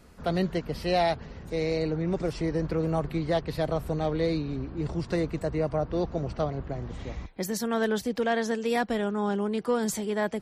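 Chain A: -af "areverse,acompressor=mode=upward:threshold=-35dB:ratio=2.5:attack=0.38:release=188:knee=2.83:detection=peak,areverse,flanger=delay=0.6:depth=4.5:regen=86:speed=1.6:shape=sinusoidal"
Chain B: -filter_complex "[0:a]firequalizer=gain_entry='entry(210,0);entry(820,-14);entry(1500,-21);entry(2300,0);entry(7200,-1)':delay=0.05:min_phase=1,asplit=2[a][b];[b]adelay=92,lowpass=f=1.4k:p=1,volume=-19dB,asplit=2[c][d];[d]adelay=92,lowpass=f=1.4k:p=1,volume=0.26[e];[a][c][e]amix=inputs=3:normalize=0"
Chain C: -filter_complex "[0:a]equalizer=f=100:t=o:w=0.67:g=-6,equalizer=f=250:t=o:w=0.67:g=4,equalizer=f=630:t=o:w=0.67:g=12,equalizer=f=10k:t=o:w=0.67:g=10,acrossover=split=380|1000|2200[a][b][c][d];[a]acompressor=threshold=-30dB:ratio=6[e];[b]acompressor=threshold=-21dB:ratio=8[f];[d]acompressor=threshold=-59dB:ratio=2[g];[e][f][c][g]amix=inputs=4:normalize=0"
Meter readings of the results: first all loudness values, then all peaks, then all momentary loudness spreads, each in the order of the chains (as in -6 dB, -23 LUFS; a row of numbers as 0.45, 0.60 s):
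-34.0, -32.0, -26.0 LUFS; -18.5, -17.5, -10.5 dBFS; 6, 5, 8 LU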